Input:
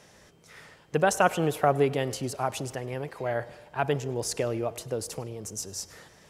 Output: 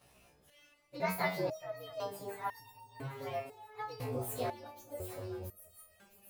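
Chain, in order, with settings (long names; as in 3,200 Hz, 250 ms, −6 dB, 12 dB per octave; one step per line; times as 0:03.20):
partials spread apart or drawn together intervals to 119%
echo with a time of its own for lows and highs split 960 Hz, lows 244 ms, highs 665 ms, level −9.5 dB
step-sequenced resonator 2 Hz 63–920 Hz
level +3.5 dB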